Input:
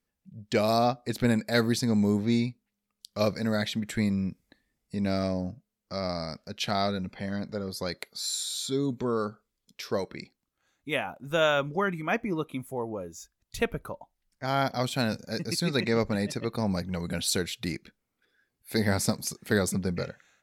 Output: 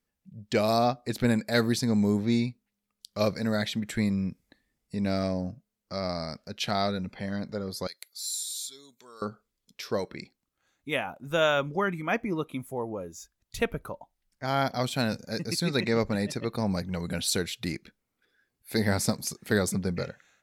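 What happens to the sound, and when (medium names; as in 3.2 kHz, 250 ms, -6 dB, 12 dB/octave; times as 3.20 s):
7.87–9.22 s: differentiator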